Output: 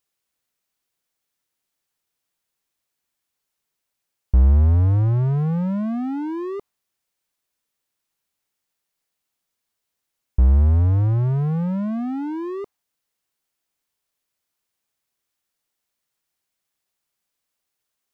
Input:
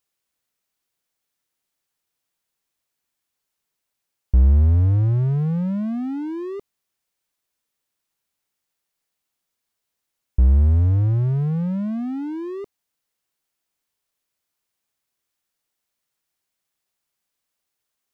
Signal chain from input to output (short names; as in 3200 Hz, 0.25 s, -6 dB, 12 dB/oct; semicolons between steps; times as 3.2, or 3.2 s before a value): dynamic EQ 970 Hz, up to +7 dB, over -51 dBFS, Q 0.92